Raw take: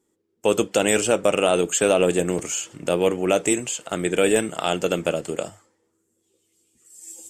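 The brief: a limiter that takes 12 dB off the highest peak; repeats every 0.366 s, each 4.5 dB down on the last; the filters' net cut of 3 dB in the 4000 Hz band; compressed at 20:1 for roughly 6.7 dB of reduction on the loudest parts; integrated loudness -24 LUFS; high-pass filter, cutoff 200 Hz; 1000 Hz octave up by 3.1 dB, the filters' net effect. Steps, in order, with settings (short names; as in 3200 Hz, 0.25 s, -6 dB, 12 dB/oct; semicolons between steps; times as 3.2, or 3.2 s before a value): HPF 200 Hz; bell 1000 Hz +5 dB; bell 4000 Hz -5 dB; compressor 20:1, threshold -19 dBFS; limiter -19.5 dBFS; feedback echo 0.366 s, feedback 60%, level -4.5 dB; gain +5.5 dB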